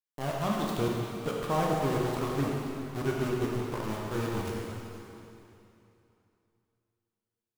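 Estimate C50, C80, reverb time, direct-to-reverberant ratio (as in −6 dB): −1.0 dB, 0.5 dB, 2.9 s, −3.0 dB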